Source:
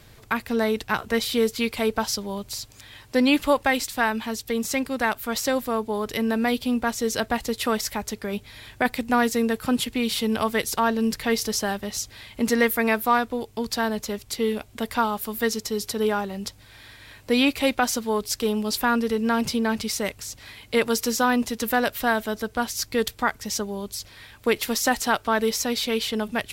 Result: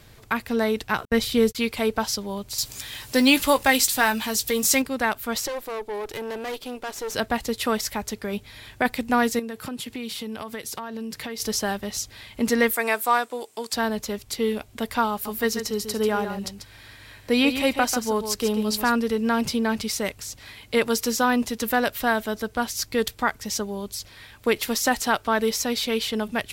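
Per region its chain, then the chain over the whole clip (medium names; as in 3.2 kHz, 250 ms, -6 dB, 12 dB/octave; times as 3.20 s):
1.05–1.55 s: bass shelf 180 Hz +10 dB + gate -30 dBFS, range -57 dB
2.58–4.82 s: companding laws mixed up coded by mu + treble shelf 3.6 kHz +11 dB + doubling 15 ms -10.5 dB
5.47–7.15 s: resonant low shelf 280 Hz -6.5 dB, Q 3 + valve stage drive 27 dB, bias 0.75
9.39–11.40 s: high-pass 85 Hz + compression 8:1, threshold -29 dBFS
12.73–13.73 s: high-pass 420 Hz + peaking EQ 8.3 kHz +11 dB 0.55 oct
15.11–18.92 s: band-stop 3.5 kHz, Q 20 + delay 141 ms -9 dB
whole clip: none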